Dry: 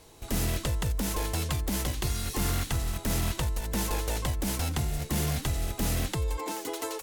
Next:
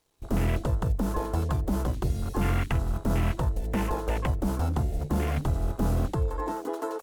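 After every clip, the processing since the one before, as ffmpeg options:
-af "aeval=exprs='sgn(val(0))*max(abs(val(0))-0.00168,0)':c=same,afwtdn=0.0126,bandreject=f=50:t=h:w=6,bandreject=f=100:t=h:w=6,bandreject=f=150:t=h:w=6,volume=1.68"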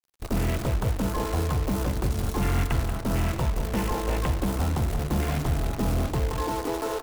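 -filter_complex "[0:a]asplit=2[s0][s1];[s1]alimiter=level_in=1.33:limit=0.0631:level=0:latency=1:release=14,volume=0.75,volume=1.26[s2];[s0][s2]amix=inputs=2:normalize=0,acrusher=bits=6:dc=4:mix=0:aa=0.000001,asplit=2[s3][s4];[s4]adelay=182,lowpass=f=3500:p=1,volume=0.376,asplit=2[s5][s6];[s6]adelay=182,lowpass=f=3500:p=1,volume=0.53,asplit=2[s7][s8];[s8]adelay=182,lowpass=f=3500:p=1,volume=0.53,asplit=2[s9][s10];[s10]adelay=182,lowpass=f=3500:p=1,volume=0.53,asplit=2[s11][s12];[s12]adelay=182,lowpass=f=3500:p=1,volume=0.53,asplit=2[s13][s14];[s14]adelay=182,lowpass=f=3500:p=1,volume=0.53[s15];[s3][s5][s7][s9][s11][s13][s15]amix=inputs=7:normalize=0,volume=0.668"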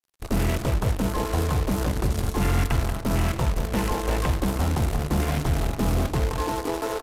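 -filter_complex "[0:a]asplit=2[s0][s1];[s1]acrusher=bits=3:mix=0:aa=0.000001,volume=0.251[s2];[s0][s2]amix=inputs=2:normalize=0,aresample=32000,aresample=44100"

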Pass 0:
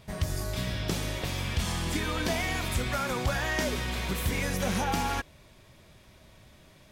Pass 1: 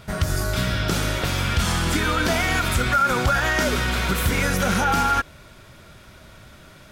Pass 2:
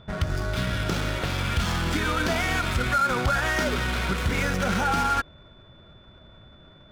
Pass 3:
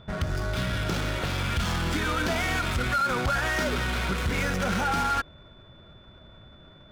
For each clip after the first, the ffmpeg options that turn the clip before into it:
-af "equalizer=f=1400:w=7.7:g=14.5,alimiter=limit=0.1:level=0:latency=1:release=66,volume=2.66"
-af "adynamicsmooth=sensitivity=6:basefreq=1000,aeval=exprs='val(0)+0.00251*sin(2*PI*3500*n/s)':c=same,volume=0.668"
-af "asoftclip=type=tanh:threshold=0.106"

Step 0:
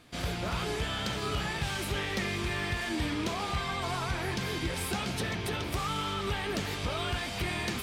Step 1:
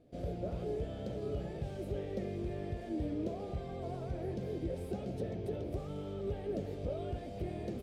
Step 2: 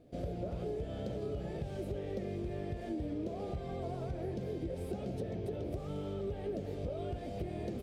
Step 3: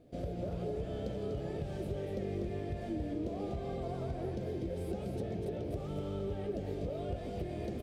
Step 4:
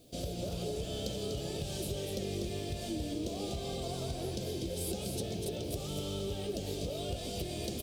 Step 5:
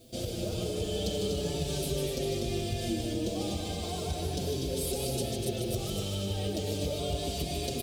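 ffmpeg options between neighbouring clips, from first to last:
-af "firequalizer=gain_entry='entry(210,0);entry(570,7);entry(960,-19)':delay=0.05:min_phase=1,volume=0.562"
-af "acompressor=threshold=0.0126:ratio=6,volume=1.5"
-af "aecho=1:1:245:0.501"
-af "aexciter=amount=6.4:drive=6.6:freq=2800"
-filter_complex "[0:a]aecho=1:1:151:0.531,asplit=2[s0][s1];[s1]adelay=5.7,afreqshift=-0.35[s2];[s0][s2]amix=inputs=2:normalize=1,volume=2.24"

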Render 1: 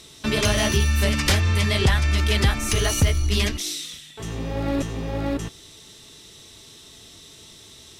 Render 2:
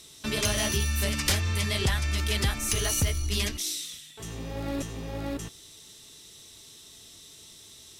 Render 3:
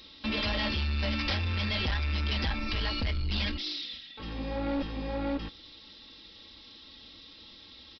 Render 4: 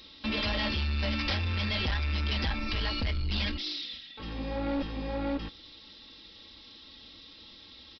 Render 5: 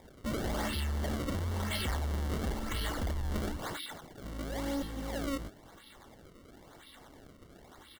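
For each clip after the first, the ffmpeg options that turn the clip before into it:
-af "aemphasis=mode=production:type=cd,volume=0.422"
-af "aecho=1:1:3.7:0.95,aresample=11025,asoftclip=type=tanh:threshold=0.0501,aresample=44100"
-af anull
-af "acrusher=samples=30:mix=1:aa=0.000001:lfo=1:lforange=48:lforate=0.98,asuperstop=centerf=2500:order=8:qfactor=7.2,volume=0.668"

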